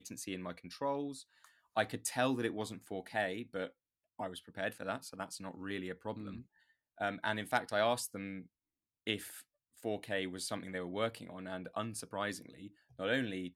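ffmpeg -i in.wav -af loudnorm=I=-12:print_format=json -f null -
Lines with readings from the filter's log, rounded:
"input_i" : "-39.0",
"input_tp" : "-16.4",
"input_lra" : "3.1",
"input_thresh" : "-49.5",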